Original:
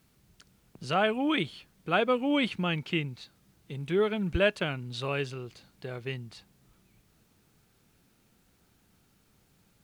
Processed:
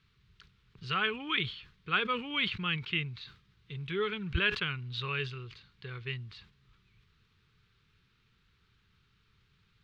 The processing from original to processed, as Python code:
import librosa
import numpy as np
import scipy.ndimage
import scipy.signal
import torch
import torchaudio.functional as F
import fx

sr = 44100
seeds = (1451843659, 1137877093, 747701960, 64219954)

y = fx.curve_eq(x, sr, hz=(120.0, 290.0, 430.0, 640.0, 1100.0, 3800.0, 9600.0), db=(0, -15, -6, -25, -1, 2, -26))
y = fx.sustainer(y, sr, db_per_s=120.0)